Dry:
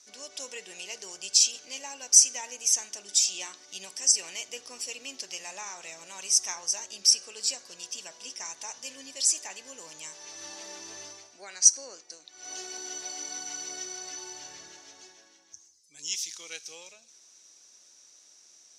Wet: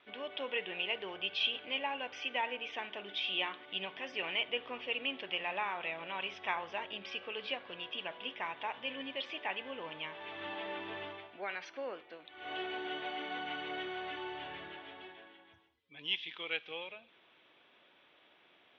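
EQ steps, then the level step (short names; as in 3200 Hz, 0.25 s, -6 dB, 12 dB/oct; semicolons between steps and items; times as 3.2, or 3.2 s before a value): Chebyshev low-pass 3400 Hz, order 6; +6.5 dB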